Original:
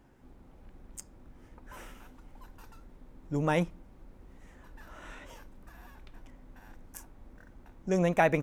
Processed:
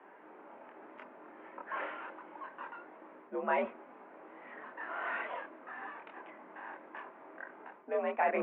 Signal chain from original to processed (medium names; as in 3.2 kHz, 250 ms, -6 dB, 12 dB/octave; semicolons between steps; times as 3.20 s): mistuned SSB +59 Hz 150–3000 Hz; reverse; compression 12:1, threshold -36 dBFS, peak gain reduction 18 dB; reverse; chorus voices 6, 0.4 Hz, delay 25 ms, depth 3.1 ms; three-band isolator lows -16 dB, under 530 Hz, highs -19 dB, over 2.3 kHz; trim +16.5 dB